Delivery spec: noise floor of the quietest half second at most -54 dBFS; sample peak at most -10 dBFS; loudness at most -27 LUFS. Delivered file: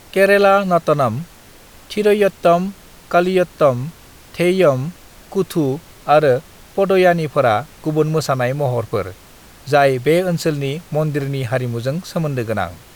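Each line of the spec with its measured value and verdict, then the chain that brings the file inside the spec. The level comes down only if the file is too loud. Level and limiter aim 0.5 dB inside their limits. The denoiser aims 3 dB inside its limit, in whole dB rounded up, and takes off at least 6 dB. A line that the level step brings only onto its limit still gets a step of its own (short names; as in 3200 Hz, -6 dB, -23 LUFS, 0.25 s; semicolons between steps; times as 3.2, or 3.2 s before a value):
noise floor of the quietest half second -43 dBFS: fail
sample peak -2.0 dBFS: fail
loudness -17.0 LUFS: fail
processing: denoiser 6 dB, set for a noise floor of -43 dBFS; gain -10.5 dB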